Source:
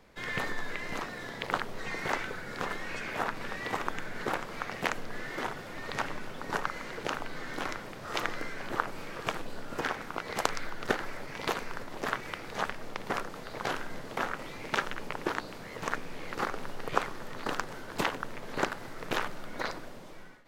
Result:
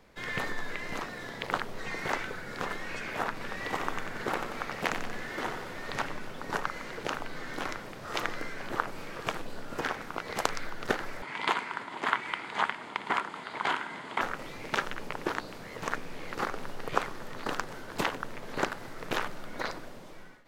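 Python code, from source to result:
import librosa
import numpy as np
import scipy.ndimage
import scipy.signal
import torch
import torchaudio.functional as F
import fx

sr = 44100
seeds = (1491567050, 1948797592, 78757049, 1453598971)

y = fx.echo_feedback(x, sr, ms=91, feedback_pct=58, wet_db=-7.5, at=(3.48, 6.04))
y = fx.cabinet(y, sr, low_hz=190.0, low_slope=12, high_hz=9500.0, hz=(520.0, 960.0, 1400.0, 2100.0, 3200.0, 5700.0), db=(-8, 9, 4, 7, 6, -9), at=(11.22, 14.21))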